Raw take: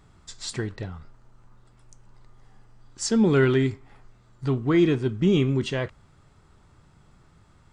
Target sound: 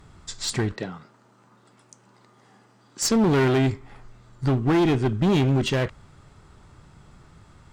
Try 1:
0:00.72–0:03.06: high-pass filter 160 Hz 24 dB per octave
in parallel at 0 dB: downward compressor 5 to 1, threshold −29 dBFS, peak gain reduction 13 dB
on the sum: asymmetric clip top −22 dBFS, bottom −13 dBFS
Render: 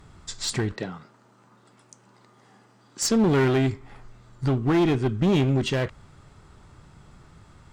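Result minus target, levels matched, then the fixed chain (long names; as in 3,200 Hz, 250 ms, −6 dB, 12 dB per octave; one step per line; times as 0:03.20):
downward compressor: peak gain reduction +7 dB
0:00.72–0:03.06: high-pass filter 160 Hz 24 dB per octave
in parallel at 0 dB: downward compressor 5 to 1, threshold −20 dBFS, peak gain reduction 5.5 dB
on the sum: asymmetric clip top −22 dBFS, bottom −13 dBFS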